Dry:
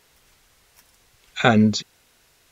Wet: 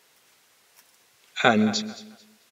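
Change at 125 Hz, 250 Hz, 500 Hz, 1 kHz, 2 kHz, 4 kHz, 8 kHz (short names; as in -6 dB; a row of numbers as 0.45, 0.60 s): -9.5 dB, -5.0 dB, -2.0 dB, -1.5 dB, -1.0 dB, -1.0 dB, n/a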